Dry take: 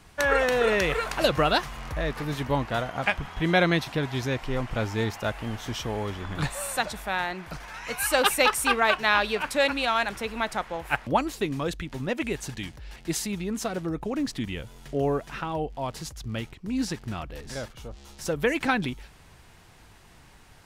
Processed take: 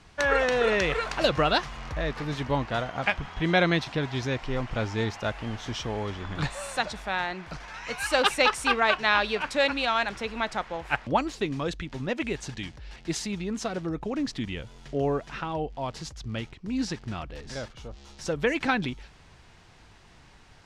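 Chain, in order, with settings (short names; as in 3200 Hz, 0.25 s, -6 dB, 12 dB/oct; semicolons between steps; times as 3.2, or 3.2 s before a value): Chebyshev low-pass 5700 Hz, order 2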